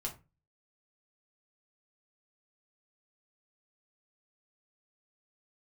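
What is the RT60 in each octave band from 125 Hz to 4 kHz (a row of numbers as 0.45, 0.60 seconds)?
0.50, 0.40, 0.30, 0.25, 0.25, 0.20 seconds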